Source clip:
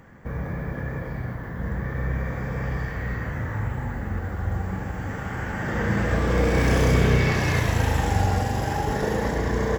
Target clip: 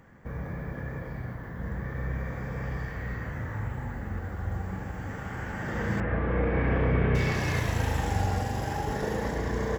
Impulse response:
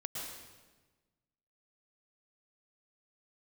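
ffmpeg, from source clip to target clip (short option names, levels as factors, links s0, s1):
-filter_complex "[0:a]asettb=1/sr,asplit=3[s0][s1][s2];[s0]atrim=end=6.004[s3];[s1]atrim=start=6:end=7.15,asetpts=PTS-STARTPTS,afade=t=in:d=0.004:c=qsin,afade=t=out:st=1.146:d=0.004:c=qsin,lowpass=f=2400:w=0.5412,lowpass=f=2400:w=1.3066[s4];[s2]atrim=start=7.146[s5];[s3][s4]acrossfade=d=0.004:c1=hsin:c2=qsin[s6];[s6][s5]acrossfade=d=0.004:c1=qsin:c2=hsin,volume=0.531"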